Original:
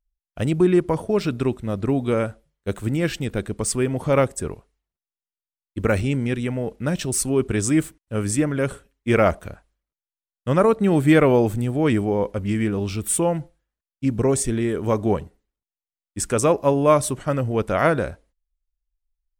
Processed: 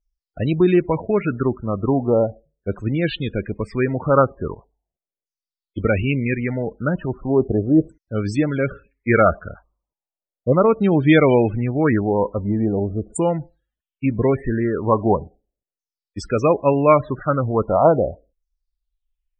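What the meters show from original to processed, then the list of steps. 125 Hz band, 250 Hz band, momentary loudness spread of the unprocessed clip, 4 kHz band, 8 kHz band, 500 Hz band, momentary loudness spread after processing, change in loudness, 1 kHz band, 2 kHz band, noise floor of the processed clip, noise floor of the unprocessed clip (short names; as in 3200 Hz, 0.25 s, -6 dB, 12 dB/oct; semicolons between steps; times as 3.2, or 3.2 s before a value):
+1.5 dB, +2.0 dB, 10 LU, -2.0 dB, under -15 dB, +2.5 dB, 11 LU, +2.0 dB, +4.0 dB, +2.0 dB, under -85 dBFS, under -85 dBFS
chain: LFO low-pass saw down 0.38 Hz 490–6500 Hz; loudest bins only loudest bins 32; gain +1.5 dB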